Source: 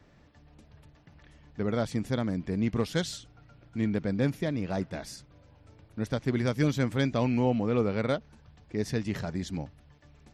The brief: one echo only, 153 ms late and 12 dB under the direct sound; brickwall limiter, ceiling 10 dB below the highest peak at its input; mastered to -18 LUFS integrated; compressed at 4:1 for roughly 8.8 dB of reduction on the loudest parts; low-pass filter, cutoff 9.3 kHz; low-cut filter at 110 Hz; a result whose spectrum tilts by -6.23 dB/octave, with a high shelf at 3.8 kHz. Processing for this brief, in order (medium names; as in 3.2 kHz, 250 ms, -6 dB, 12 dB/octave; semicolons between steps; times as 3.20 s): high-pass 110 Hz; low-pass 9.3 kHz; treble shelf 3.8 kHz -7 dB; compression 4:1, threshold -33 dBFS; peak limiter -32 dBFS; delay 153 ms -12 dB; trim +25 dB